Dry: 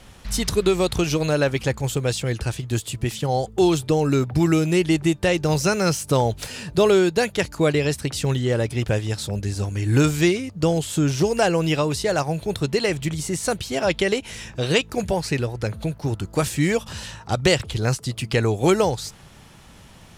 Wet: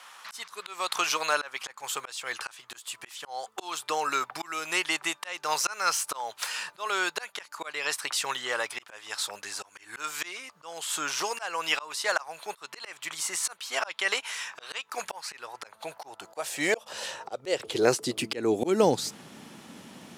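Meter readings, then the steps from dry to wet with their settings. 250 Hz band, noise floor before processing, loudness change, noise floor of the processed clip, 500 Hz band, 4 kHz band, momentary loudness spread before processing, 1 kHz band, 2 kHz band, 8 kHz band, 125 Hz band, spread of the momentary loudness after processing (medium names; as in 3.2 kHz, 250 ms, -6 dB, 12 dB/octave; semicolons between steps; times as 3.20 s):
-15.5 dB, -46 dBFS, -8.5 dB, -60 dBFS, -11.0 dB, -4.0 dB, 8 LU, -3.5 dB, -2.5 dB, -2.5 dB, -25.5 dB, 15 LU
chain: high-pass sweep 1.1 kHz -> 240 Hz, 15.30–18.92 s; slow attack 306 ms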